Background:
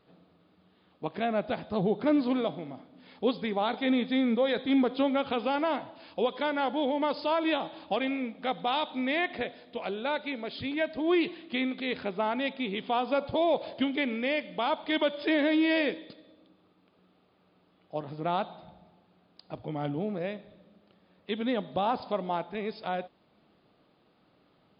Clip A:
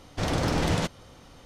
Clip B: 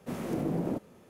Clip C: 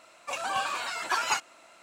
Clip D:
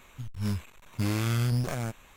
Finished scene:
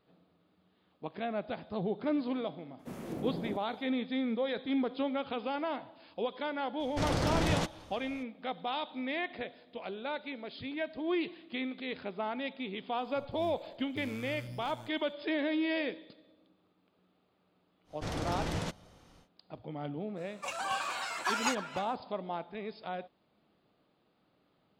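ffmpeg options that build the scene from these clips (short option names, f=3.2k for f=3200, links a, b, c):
-filter_complex "[1:a]asplit=2[a][b];[0:a]volume=-6.5dB[c];[3:a]asplit=2[d][e];[e]adelay=300,highpass=300,lowpass=3.4k,asoftclip=type=hard:threshold=-22dB,volume=-10dB[f];[d][f]amix=inputs=2:normalize=0[g];[2:a]atrim=end=1.09,asetpts=PTS-STARTPTS,volume=-7dB,afade=t=in:d=0.004:c=hsin,afade=t=out:st=1.086:d=0.004:c=hsin,adelay=2790[h];[a]atrim=end=1.45,asetpts=PTS-STARTPTS,volume=-4.5dB,afade=t=in:d=0.02,afade=t=out:st=1.43:d=0.02,adelay=6790[i];[4:a]atrim=end=2.16,asetpts=PTS-STARTPTS,volume=-18dB,afade=t=in:d=0.004:c=hsin,afade=t=out:st=2.156:d=0.004:c=hsin,adelay=12970[j];[b]atrim=end=1.45,asetpts=PTS-STARTPTS,volume=-9.5dB,afade=t=in:d=0.1,afade=t=out:st=1.35:d=0.1,adelay=17840[k];[g]atrim=end=1.82,asetpts=PTS-STARTPTS,volume=-4.5dB,afade=t=in:d=0.05,afade=t=out:st=1.77:d=0.05,adelay=20150[l];[c][h][i][j][k][l]amix=inputs=6:normalize=0"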